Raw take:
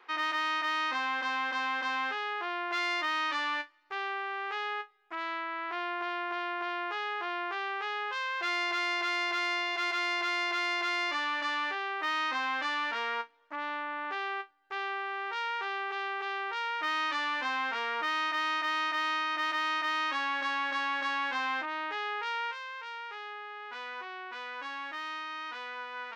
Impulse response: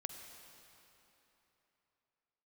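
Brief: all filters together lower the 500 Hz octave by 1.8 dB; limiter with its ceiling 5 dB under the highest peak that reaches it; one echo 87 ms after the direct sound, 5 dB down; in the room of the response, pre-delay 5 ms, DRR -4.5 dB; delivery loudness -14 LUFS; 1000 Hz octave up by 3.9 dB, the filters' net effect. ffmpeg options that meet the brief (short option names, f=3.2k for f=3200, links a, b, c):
-filter_complex "[0:a]equalizer=f=500:t=o:g=-5.5,equalizer=f=1k:t=o:g=6,alimiter=level_in=0.5dB:limit=-24dB:level=0:latency=1,volume=-0.5dB,aecho=1:1:87:0.562,asplit=2[a][b];[1:a]atrim=start_sample=2205,adelay=5[c];[b][c]afir=irnorm=-1:irlink=0,volume=6.5dB[d];[a][d]amix=inputs=2:normalize=0,volume=11.5dB"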